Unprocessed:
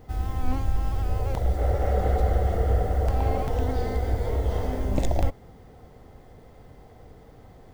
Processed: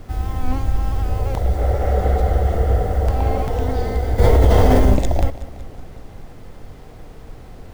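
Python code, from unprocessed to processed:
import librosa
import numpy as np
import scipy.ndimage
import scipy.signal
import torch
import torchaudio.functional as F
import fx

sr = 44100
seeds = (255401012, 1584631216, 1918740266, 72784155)

p1 = fx.dmg_noise_colour(x, sr, seeds[0], colour='brown', level_db=-41.0)
p2 = p1 + fx.echo_feedback(p1, sr, ms=186, feedback_pct=58, wet_db=-16.0, dry=0)
p3 = fx.env_flatten(p2, sr, amount_pct=100, at=(4.18, 4.95), fade=0.02)
y = p3 * 10.0 ** (5.0 / 20.0)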